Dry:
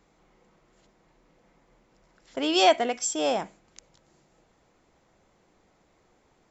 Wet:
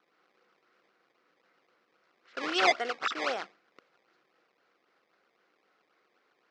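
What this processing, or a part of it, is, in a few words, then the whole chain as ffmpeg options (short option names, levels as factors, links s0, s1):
circuit-bent sampling toy: -af "acrusher=samples=18:mix=1:aa=0.000001:lfo=1:lforange=28.8:lforate=3.8,highpass=530,equalizer=f=630:t=q:w=4:g=-7,equalizer=f=900:t=q:w=4:g=-9,equalizer=f=1400:t=q:w=4:g=6,equalizer=f=3500:t=q:w=4:g=-4,lowpass=f=4900:w=0.5412,lowpass=f=4900:w=1.3066,volume=0.891"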